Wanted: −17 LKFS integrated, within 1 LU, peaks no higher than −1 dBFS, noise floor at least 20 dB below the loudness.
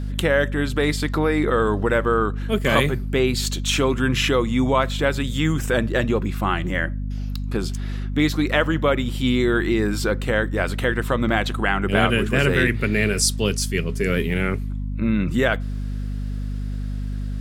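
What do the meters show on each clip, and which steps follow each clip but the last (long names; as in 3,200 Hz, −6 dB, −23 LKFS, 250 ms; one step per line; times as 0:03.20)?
mains hum 50 Hz; hum harmonics up to 250 Hz; level of the hum −24 dBFS; integrated loudness −22.0 LKFS; sample peak −2.5 dBFS; target loudness −17.0 LKFS
→ hum removal 50 Hz, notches 5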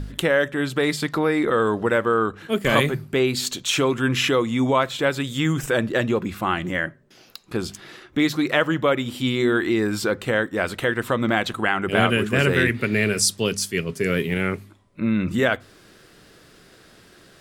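mains hum none found; integrated loudness −22.0 LKFS; sample peak −2.5 dBFS; target loudness −17.0 LKFS
→ level +5 dB
brickwall limiter −1 dBFS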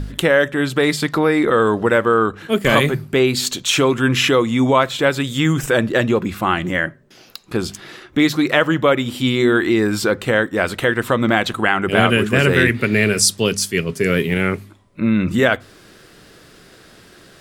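integrated loudness −17.0 LKFS; sample peak −1.0 dBFS; background noise floor −47 dBFS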